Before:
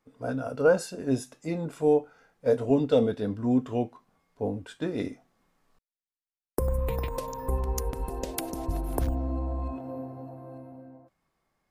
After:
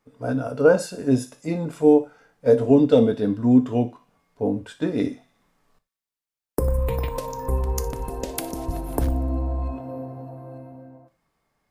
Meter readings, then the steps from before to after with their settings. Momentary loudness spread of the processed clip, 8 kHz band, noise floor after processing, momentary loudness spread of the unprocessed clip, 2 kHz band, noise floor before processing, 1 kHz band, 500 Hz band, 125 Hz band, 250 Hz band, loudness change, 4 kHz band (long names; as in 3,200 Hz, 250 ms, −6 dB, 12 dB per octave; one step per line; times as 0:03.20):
16 LU, +4.0 dB, below −85 dBFS, 14 LU, +4.0 dB, below −85 dBFS, +4.0 dB, +5.5 dB, +6.0 dB, +8.0 dB, +6.5 dB, +4.0 dB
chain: dynamic equaliser 280 Hz, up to +5 dB, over −35 dBFS, Q 1.5
delay with a high-pass on its return 60 ms, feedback 64%, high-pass 2,000 Hz, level −17.5 dB
reverb whose tail is shaped and stops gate 110 ms falling, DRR 10.5 dB
level +3.5 dB